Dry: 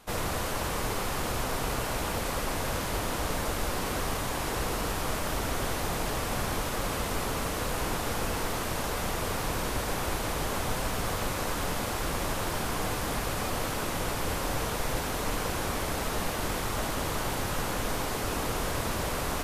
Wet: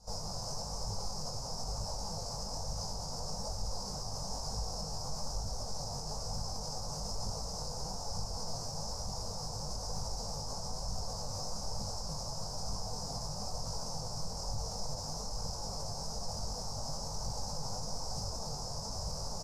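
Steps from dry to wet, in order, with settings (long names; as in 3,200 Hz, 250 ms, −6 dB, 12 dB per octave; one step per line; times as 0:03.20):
drawn EQ curve 180 Hz 0 dB, 320 Hz −20 dB, 480 Hz −6 dB, 860 Hz −2 dB, 1,900 Hz −29 dB, 3,400 Hz −26 dB, 5,100 Hz +11 dB, 12,000 Hz −17 dB
brickwall limiter −28.5 dBFS, peak gain reduction 10.5 dB
flanger 1.1 Hz, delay 0.2 ms, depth 8.6 ms, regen +43%
double-tracking delay 20 ms −4 dB
echo ahead of the sound 39 ms −18 dB
level +1 dB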